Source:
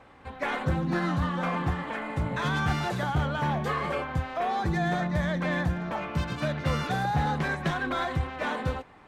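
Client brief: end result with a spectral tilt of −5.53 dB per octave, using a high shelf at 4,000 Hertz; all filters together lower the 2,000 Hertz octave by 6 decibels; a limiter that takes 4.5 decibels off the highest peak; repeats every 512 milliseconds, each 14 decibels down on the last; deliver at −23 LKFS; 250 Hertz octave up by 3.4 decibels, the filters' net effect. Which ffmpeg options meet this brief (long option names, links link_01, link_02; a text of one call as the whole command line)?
ffmpeg -i in.wav -af "equalizer=frequency=250:width_type=o:gain=5.5,equalizer=frequency=2000:width_type=o:gain=-7,highshelf=frequency=4000:gain=-6.5,alimiter=limit=-19.5dB:level=0:latency=1,aecho=1:1:512|1024:0.2|0.0399,volume=6.5dB" out.wav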